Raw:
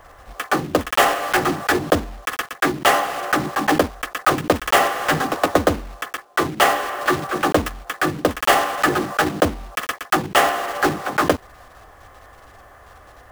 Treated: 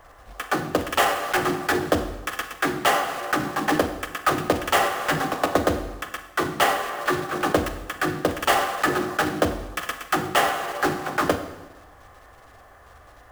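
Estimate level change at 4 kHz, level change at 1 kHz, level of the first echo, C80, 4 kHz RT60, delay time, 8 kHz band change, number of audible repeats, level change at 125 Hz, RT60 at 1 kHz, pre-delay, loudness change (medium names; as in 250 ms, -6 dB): -4.0 dB, -4.0 dB, no echo, 12.0 dB, 0.95 s, no echo, -4.0 dB, no echo, -3.5 dB, 0.95 s, 30 ms, -4.0 dB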